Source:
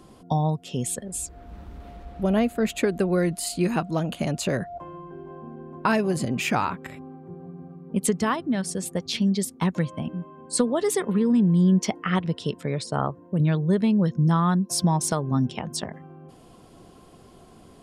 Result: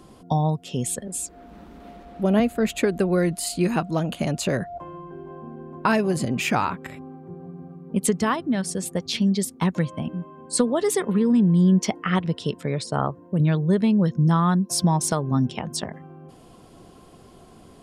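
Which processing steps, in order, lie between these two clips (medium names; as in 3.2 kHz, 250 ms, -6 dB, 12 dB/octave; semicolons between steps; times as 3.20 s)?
1.07–2.40 s: resonant low shelf 150 Hz -10.5 dB, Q 1.5; trim +1.5 dB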